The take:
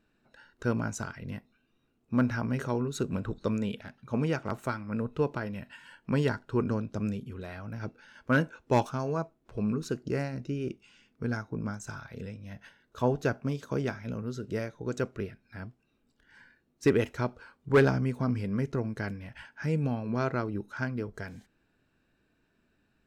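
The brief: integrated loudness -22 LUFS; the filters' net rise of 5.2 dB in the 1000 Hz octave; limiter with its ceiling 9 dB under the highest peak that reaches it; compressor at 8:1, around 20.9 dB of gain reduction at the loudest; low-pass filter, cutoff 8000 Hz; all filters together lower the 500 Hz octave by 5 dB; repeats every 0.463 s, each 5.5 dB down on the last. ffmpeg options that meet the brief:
-af "lowpass=8k,equalizer=f=500:t=o:g=-8.5,equalizer=f=1k:t=o:g=9,acompressor=threshold=-41dB:ratio=8,alimiter=level_in=13.5dB:limit=-24dB:level=0:latency=1,volume=-13.5dB,aecho=1:1:463|926|1389|1852|2315|2778|3241:0.531|0.281|0.149|0.079|0.0419|0.0222|0.0118,volume=25dB"

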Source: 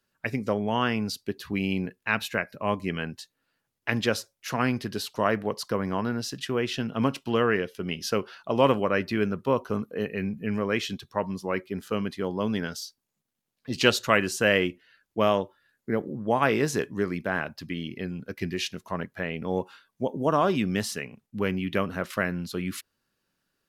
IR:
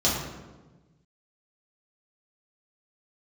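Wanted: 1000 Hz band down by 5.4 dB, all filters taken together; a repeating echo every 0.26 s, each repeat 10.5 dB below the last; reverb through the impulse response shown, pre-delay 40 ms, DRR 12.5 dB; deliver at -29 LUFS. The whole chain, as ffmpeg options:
-filter_complex "[0:a]equalizer=f=1k:t=o:g=-7,aecho=1:1:260|520|780:0.299|0.0896|0.0269,asplit=2[a][b];[1:a]atrim=start_sample=2205,adelay=40[c];[b][c]afir=irnorm=-1:irlink=0,volume=-26.5dB[d];[a][d]amix=inputs=2:normalize=0,volume=-0.5dB"

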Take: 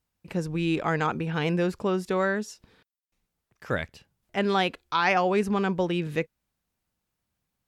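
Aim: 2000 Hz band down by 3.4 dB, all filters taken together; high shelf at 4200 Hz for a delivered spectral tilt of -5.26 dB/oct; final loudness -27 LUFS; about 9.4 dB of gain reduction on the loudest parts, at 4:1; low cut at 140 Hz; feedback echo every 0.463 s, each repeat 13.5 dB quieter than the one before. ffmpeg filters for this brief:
-af "highpass=140,equalizer=f=2k:t=o:g=-3,highshelf=f=4.2k:g=-7,acompressor=threshold=-32dB:ratio=4,aecho=1:1:463|926:0.211|0.0444,volume=9dB"

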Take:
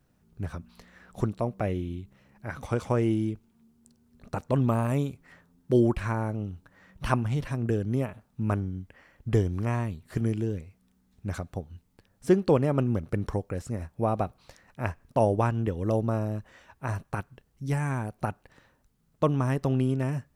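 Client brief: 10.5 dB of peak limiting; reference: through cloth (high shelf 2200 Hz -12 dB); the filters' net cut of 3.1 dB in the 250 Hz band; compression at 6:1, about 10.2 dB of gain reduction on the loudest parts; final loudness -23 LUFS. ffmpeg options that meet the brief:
-af "equalizer=f=250:t=o:g=-4,acompressor=threshold=-29dB:ratio=6,alimiter=level_in=3.5dB:limit=-24dB:level=0:latency=1,volume=-3.5dB,highshelf=f=2.2k:g=-12,volume=16.5dB"

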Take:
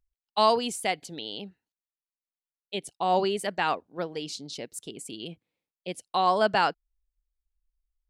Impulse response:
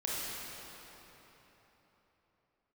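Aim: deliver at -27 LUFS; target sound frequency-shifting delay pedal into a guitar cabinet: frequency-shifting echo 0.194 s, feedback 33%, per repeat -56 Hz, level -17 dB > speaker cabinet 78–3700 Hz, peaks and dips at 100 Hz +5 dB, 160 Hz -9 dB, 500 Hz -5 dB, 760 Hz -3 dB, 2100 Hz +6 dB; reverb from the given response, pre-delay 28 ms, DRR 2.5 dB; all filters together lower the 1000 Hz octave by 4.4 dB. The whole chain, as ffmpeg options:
-filter_complex "[0:a]equalizer=f=1k:t=o:g=-3.5,asplit=2[a][b];[1:a]atrim=start_sample=2205,adelay=28[c];[b][c]afir=irnorm=-1:irlink=0,volume=-8dB[d];[a][d]amix=inputs=2:normalize=0,asplit=4[e][f][g][h];[f]adelay=194,afreqshift=-56,volume=-17dB[i];[g]adelay=388,afreqshift=-112,volume=-26.6dB[j];[h]adelay=582,afreqshift=-168,volume=-36.3dB[k];[e][i][j][k]amix=inputs=4:normalize=0,highpass=78,equalizer=f=100:t=q:w=4:g=5,equalizer=f=160:t=q:w=4:g=-9,equalizer=f=500:t=q:w=4:g=-5,equalizer=f=760:t=q:w=4:g=-3,equalizer=f=2.1k:t=q:w=4:g=6,lowpass=f=3.7k:w=0.5412,lowpass=f=3.7k:w=1.3066,volume=3dB"

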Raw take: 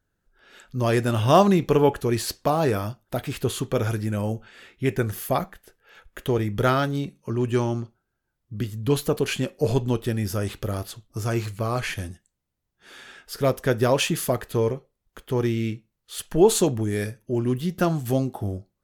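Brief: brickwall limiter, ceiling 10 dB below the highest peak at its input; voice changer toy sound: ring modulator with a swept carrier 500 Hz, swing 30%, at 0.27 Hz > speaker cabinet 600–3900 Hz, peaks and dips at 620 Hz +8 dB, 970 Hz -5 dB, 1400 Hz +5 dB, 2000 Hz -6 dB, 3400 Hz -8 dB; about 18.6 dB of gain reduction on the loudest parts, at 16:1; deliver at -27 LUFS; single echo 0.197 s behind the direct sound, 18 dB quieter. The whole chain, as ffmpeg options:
-af "acompressor=threshold=-29dB:ratio=16,alimiter=level_in=3dB:limit=-24dB:level=0:latency=1,volume=-3dB,aecho=1:1:197:0.126,aeval=exprs='val(0)*sin(2*PI*500*n/s+500*0.3/0.27*sin(2*PI*0.27*n/s))':c=same,highpass=600,equalizer=f=620:t=q:w=4:g=8,equalizer=f=970:t=q:w=4:g=-5,equalizer=f=1.4k:t=q:w=4:g=5,equalizer=f=2k:t=q:w=4:g=-6,equalizer=f=3.4k:t=q:w=4:g=-8,lowpass=f=3.9k:w=0.5412,lowpass=f=3.9k:w=1.3066,volume=15dB"

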